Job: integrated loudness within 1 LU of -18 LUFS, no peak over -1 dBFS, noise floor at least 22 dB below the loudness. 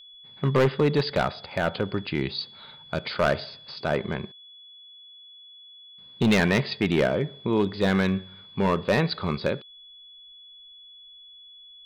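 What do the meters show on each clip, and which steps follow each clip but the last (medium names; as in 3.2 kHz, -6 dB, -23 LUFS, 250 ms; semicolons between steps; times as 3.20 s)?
clipped samples 1.0%; clipping level -15.0 dBFS; steady tone 3.4 kHz; tone level -46 dBFS; loudness -25.5 LUFS; peak level -15.0 dBFS; loudness target -18.0 LUFS
-> clip repair -15 dBFS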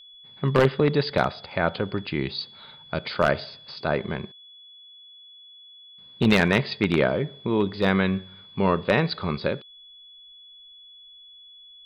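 clipped samples 0.0%; steady tone 3.4 kHz; tone level -46 dBFS
-> band-stop 3.4 kHz, Q 30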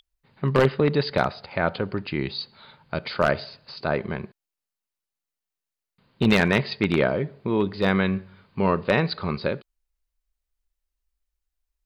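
steady tone not found; loudness -24.5 LUFS; peak level -5.5 dBFS; loudness target -18.0 LUFS
-> trim +6.5 dB; peak limiter -1 dBFS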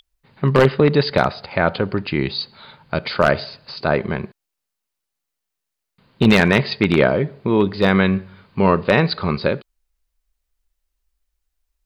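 loudness -18.5 LUFS; peak level -1.0 dBFS; noise floor -81 dBFS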